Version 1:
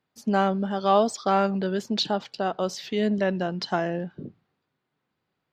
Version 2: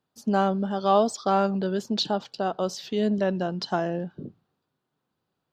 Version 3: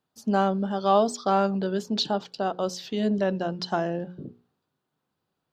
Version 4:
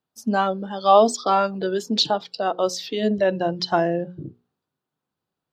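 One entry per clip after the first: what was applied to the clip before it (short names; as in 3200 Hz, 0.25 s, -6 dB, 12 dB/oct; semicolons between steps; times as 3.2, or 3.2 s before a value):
bell 2100 Hz -9 dB 0.59 oct
notches 60/120/180/240/300/360/420/480/540 Hz
spectral noise reduction 11 dB; gain +7 dB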